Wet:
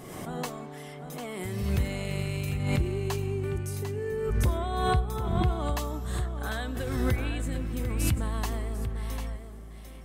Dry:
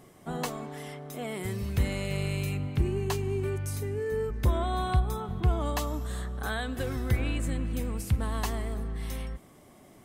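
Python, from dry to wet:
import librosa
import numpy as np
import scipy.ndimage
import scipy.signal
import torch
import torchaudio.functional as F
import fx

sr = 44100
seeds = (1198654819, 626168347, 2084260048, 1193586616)

y = x + 10.0 ** (-9.0 / 20.0) * np.pad(x, (int(747 * sr / 1000.0), 0))[:len(x)]
y = fx.pre_swell(y, sr, db_per_s=37.0)
y = y * librosa.db_to_amplitude(-2.0)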